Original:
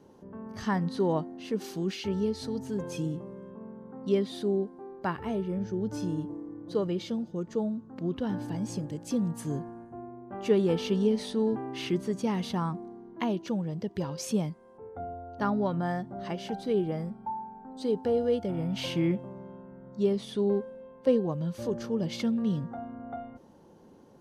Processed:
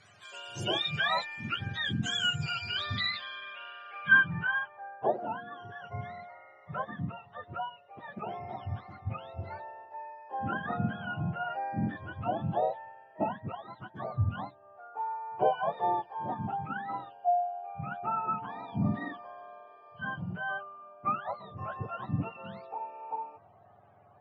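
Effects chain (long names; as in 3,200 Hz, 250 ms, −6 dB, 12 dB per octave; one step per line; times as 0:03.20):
frequency axis turned over on the octave scale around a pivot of 790 Hz
low-pass filter sweep 8,200 Hz → 770 Hz, 0:01.92–0:05.03
level +1.5 dB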